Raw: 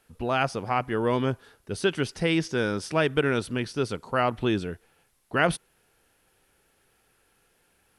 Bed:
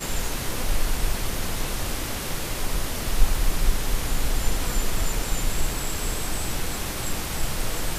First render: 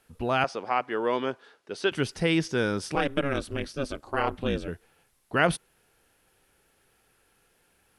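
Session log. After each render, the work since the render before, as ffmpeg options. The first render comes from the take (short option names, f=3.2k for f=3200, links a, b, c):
-filter_complex "[0:a]asettb=1/sr,asplit=3[a][b][c];[a]atrim=end=0.444[d];[b]atrim=start=0.44:end=1.92,asetpts=PTS-STARTPTS,afade=t=in:d=0.004:c=qsin,afade=t=out:st=1.476:d=0.004:c=qsin,highpass=340,lowpass=5.7k[e];[c]atrim=start=1.916[f];[d][e]acrossfade=d=0.004:c1=hsin:c2=qsin[g];[g][f]acrossfade=d=0.004:c1=qsin:c2=hsin,asettb=1/sr,asplit=3[h][i][j];[h]atrim=end=2.954[k];[i]atrim=start=2.95:end=4.68,asetpts=PTS-STARTPTS,afade=t=in:d=0.004:c=qsin,afade=t=out:st=1.726:d=0.004:c=qsin,aeval=exprs='val(0)*sin(2*PI*140*n/s)':c=same[l];[j]atrim=start=4.676[m];[k][l]acrossfade=d=0.004:c1=hsin:c2=qsin[n];[n][m]acrossfade=d=0.004:c1=qsin:c2=hsin"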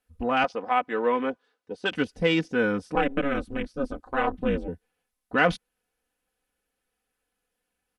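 -af "afwtdn=0.0126,aecho=1:1:4:0.72"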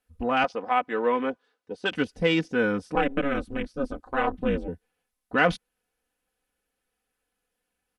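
-af anull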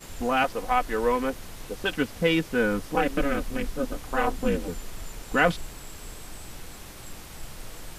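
-filter_complex "[1:a]volume=-13.5dB[a];[0:a][a]amix=inputs=2:normalize=0"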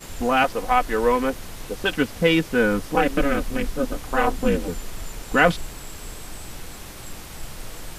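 -af "volume=4.5dB"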